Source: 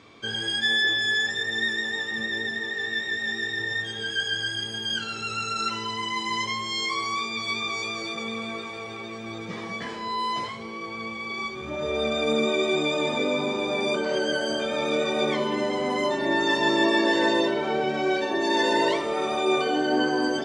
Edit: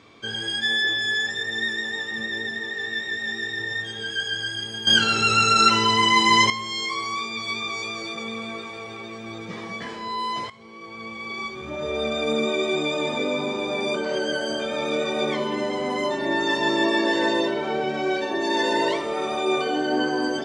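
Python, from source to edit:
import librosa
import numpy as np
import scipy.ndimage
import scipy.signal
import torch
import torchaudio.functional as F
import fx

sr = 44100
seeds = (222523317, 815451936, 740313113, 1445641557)

y = fx.edit(x, sr, fx.clip_gain(start_s=4.87, length_s=1.63, db=11.5),
    fx.fade_in_from(start_s=10.5, length_s=0.78, floor_db=-14.0), tone=tone)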